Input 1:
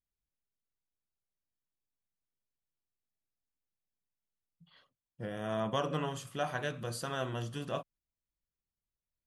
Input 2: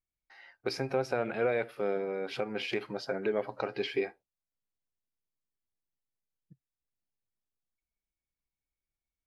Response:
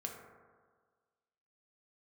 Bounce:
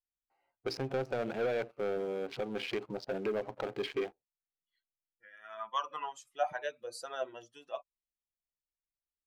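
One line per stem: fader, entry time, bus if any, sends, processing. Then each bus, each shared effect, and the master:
-0.5 dB, 0.00 s, no send, expander on every frequency bin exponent 2; low-pass 9.4 kHz; LFO high-pass sine 0.25 Hz 540–1600 Hz
-7.5 dB, 0.00 s, no send, local Wiener filter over 25 samples; waveshaping leveller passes 2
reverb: none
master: none

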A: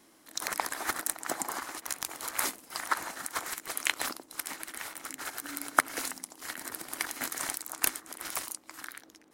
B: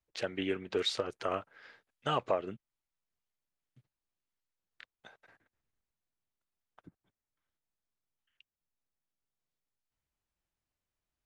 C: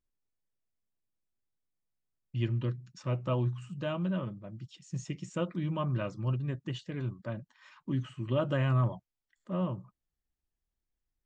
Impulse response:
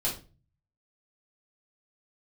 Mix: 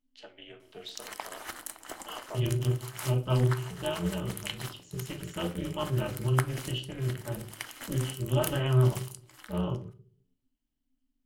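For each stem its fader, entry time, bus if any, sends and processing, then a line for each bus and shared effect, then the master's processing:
-6.0 dB, 0.60 s, send -15.5 dB, none
-14.0 dB, 0.00 s, send -8.5 dB, high-pass 310 Hz 24 dB/octave; three bands expanded up and down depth 40%
-3.5 dB, 0.00 s, send -3.5 dB, none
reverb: on, RT60 0.35 s, pre-delay 3 ms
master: peaking EQ 3 kHz +10 dB 0.22 oct; AM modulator 260 Hz, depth 65%

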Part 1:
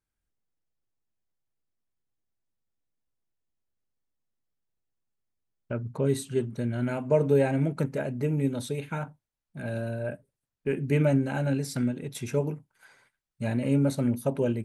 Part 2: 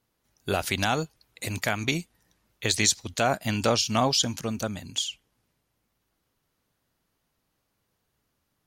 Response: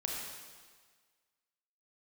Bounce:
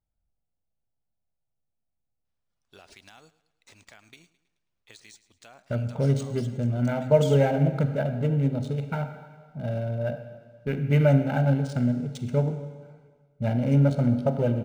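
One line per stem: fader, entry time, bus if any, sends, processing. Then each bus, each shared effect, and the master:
-1.0 dB, 0.00 s, send -5.5 dB, no echo send, local Wiener filter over 25 samples; comb 1.4 ms, depth 56%
6.75 s -21.5 dB -> 7.19 s -9 dB, 2.25 s, no send, echo send -17.5 dB, tilt EQ +2 dB/octave; compression, threshold -24 dBFS, peak gain reduction 11.5 dB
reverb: on, RT60 1.6 s, pre-delay 28 ms
echo: feedback delay 107 ms, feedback 46%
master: decimation joined by straight lines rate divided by 3×

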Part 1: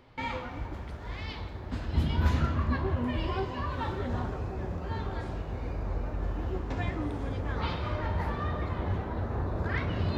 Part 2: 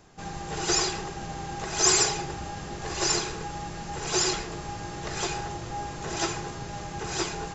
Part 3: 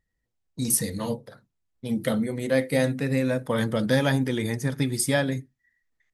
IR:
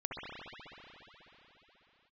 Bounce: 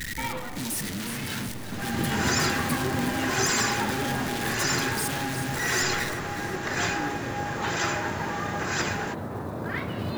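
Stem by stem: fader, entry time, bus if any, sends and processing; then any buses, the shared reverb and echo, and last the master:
+2.0 dB, 0.00 s, no send, no echo send, octave divider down 2 oct, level +4 dB; high-pass 100 Hz 24 dB/octave
-2.5 dB, 1.60 s, send -10 dB, no echo send, peaking EQ 1.7 kHz +12 dB 0.96 oct; peak limiter -15.5 dBFS, peak gain reduction 9 dB
-3.5 dB, 0.00 s, no send, echo send -9.5 dB, one-bit comparator; high-order bell 710 Hz -15 dB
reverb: on, RT60 4.2 s, pre-delay 60 ms
echo: feedback delay 365 ms, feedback 56%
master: modulation noise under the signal 28 dB; bass shelf 100 Hz -9 dB

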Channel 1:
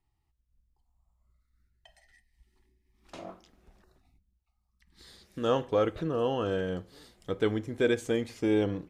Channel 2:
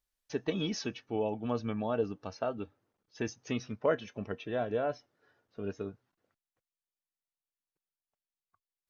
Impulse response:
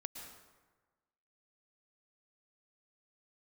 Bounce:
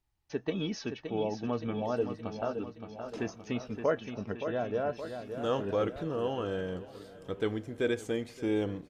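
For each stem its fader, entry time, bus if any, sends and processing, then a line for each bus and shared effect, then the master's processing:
-4.0 dB, 0.00 s, no send, echo send -19.5 dB, none
0.0 dB, 0.00 s, no send, echo send -8 dB, treble shelf 5.2 kHz -8.5 dB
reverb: none
echo: feedback delay 570 ms, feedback 54%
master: none

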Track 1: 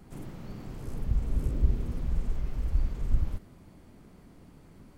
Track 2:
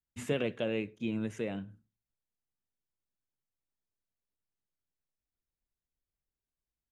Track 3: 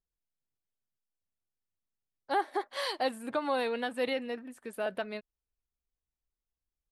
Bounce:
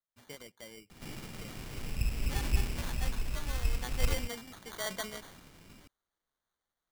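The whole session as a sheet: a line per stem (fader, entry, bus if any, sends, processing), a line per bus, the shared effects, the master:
+1.5 dB, 0.90 s, no send, none
-14.0 dB, 0.00 s, no send, reverb removal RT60 0.59 s
3.63 s -15 dB -> 4.19 s -4 dB, 0.00 s, no send, treble shelf 4.4 kHz +11 dB; decay stretcher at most 89 dB/s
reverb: none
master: sample-and-hold 17×; tilt shelf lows -6 dB, about 1.1 kHz

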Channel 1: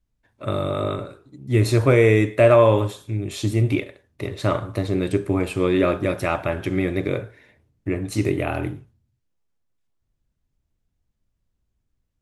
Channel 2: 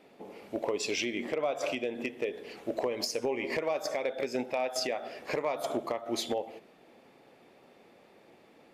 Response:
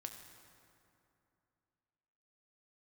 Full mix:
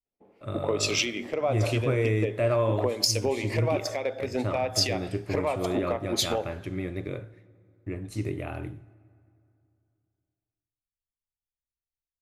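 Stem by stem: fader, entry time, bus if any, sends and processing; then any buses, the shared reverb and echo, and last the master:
-13.0 dB, 0.00 s, send -10 dB, gate with hold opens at -39 dBFS
+1.0 dB, 0.00 s, send -14.5 dB, expander -52 dBFS; three bands expanded up and down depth 100%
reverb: on, RT60 2.7 s, pre-delay 4 ms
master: bass shelf 130 Hz +6 dB

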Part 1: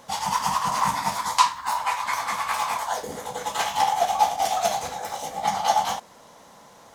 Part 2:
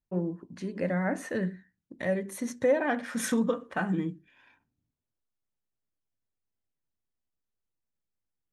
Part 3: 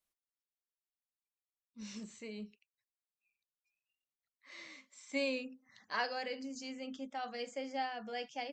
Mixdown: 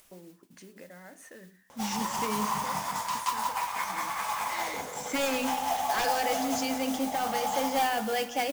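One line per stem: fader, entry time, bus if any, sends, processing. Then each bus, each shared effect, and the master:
-7.0 dB, 1.70 s, bus A, no send, echo send -5.5 dB, none
-8.0 dB, 0.00 s, no bus, no send, no echo send, high-pass 370 Hz 6 dB/octave; treble shelf 4.5 kHz +11.5 dB; compression 6:1, threshold -38 dBFS, peak gain reduction 16 dB
+0.5 dB, 0.00 s, bus A, no send, echo send -16.5 dB, sine folder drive 10 dB, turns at -22 dBFS
bus A: 0.0 dB, hum notches 60/120/180/240 Hz; peak limiter -22 dBFS, peak gain reduction 10.5 dB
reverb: none
echo: feedback delay 176 ms, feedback 45%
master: peaking EQ 4.1 kHz -5.5 dB 0.28 oct; upward compressor, threshold -49 dBFS; modulation noise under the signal 13 dB

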